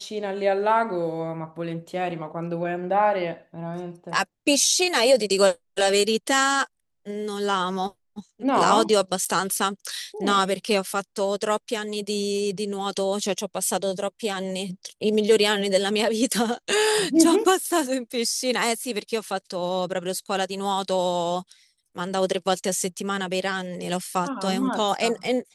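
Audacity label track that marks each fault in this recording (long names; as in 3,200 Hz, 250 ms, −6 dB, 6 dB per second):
9.250000	9.260000	drop-out 7 ms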